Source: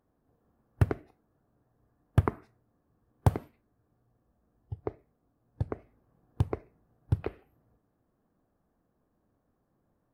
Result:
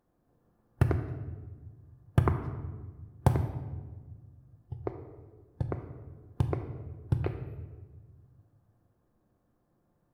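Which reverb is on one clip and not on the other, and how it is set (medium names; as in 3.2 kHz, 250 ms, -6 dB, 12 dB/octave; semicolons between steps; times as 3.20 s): simulated room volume 1100 m³, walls mixed, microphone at 0.86 m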